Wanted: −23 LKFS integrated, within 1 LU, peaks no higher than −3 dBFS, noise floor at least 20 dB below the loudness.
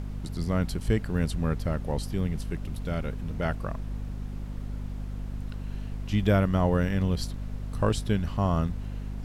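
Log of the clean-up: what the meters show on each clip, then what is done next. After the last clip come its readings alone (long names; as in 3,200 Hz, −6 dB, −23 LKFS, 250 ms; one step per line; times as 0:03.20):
mains hum 50 Hz; hum harmonics up to 250 Hz; level of the hum −32 dBFS; background noise floor −36 dBFS; target noise floor −50 dBFS; integrated loudness −30.0 LKFS; sample peak −11.0 dBFS; target loudness −23.0 LKFS
→ hum removal 50 Hz, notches 5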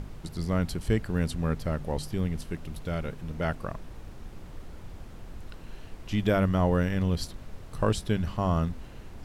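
mains hum none found; background noise floor −45 dBFS; target noise floor −50 dBFS
→ noise reduction from a noise print 6 dB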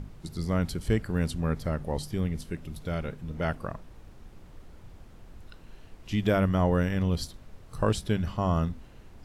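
background noise floor −51 dBFS; integrated loudness −29.5 LKFS; sample peak −11.5 dBFS; target loudness −23.0 LKFS
→ level +6.5 dB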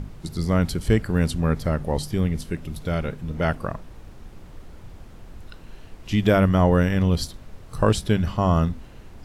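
integrated loudness −23.0 LKFS; sample peak −5.0 dBFS; background noise floor −44 dBFS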